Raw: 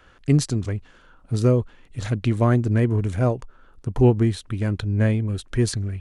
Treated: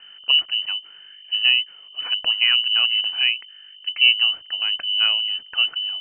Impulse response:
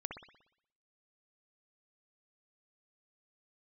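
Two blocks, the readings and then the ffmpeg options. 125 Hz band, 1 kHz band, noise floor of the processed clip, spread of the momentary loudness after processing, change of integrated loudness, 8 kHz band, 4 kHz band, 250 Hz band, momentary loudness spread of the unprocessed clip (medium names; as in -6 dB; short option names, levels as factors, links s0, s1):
under -40 dB, -7.0 dB, -45 dBFS, 13 LU, +4.0 dB, no reading, +25.5 dB, under -35 dB, 13 LU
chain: -af "aeval=exprs='val(0)+0.00891*(sin(2*PI*50*n/s)+sin(2*PI*2*50*n/s)/2+sin(2*PI*3*50*n/s)/3+sin(2*PI*4*50*n/s)/4+sin(2*PI*5*50*n/s)/5)':c=same,highpass=56,lowpass=f=2600:t=q:w=0.5098,lowpass=f=2600:t=q:w=0.6013,lowpass=f=2600:t=q:w=0.9,lowpass=f=2600:t=q:w=2.563,afreqshift=-3100"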